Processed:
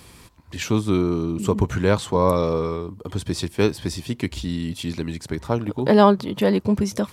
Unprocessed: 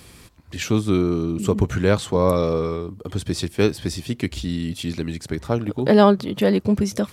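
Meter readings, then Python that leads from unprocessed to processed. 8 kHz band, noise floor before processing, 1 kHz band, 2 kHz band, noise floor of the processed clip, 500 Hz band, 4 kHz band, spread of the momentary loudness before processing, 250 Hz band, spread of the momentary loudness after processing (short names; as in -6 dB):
-1.0 dB, -47 dBFS, +2.0 dB, -1.0 dB, -48 dBFS, -1.0 dB, -1.0 dB, 12 LU, -1.0 dB, 12 LU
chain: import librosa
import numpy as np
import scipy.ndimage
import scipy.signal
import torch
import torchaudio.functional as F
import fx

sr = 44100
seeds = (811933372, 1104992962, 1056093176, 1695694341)

y = fx.peak_eq(x, sr, hz=960.0, db=7.0, octaves=0.3)
y = F.gain(torch.from_numpy(y), -1.0).numpy()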